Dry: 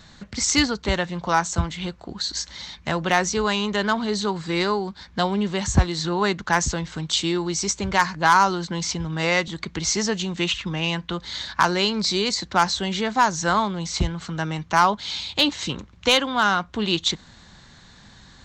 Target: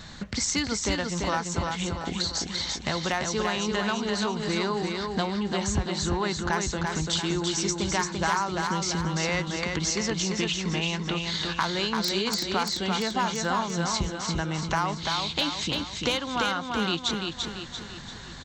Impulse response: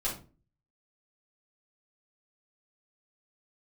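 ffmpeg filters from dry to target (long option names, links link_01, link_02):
-filter_complex "[0:a]acompressor=threshold=-34dB:ratio=3,asettb=1/sr,asplit=3[link_01][link_02][link_03];[link_01]atrim=end=11.924[link_04];[link_02]atrim=start=11.92:end=12.41,asetpts=PTS-STARTPTS,afade=type=in:duration=0.004:curve=qsin,afade=type=out:start_time=0.486:duration=0.004:curve=qsin,aeval=exprs='(mod(13.3*val(0)+1,2)-1)/13.3':channel_layout=same[link_05];[link_03]atrim=start=12.406[link_06];[link_04][link_05]acrossfade=duration=0.004:curve1=hsin:curve2=qsin[link_07];[link_07][link_06]acrossfade=duration=0.004:curve1=qsin:curve2=hsin,aecho=1:1:341|682|1023|1364|1705|2046:0.631|0.309|0.151|0.0742|0.0364|0.0178,volume=5dB"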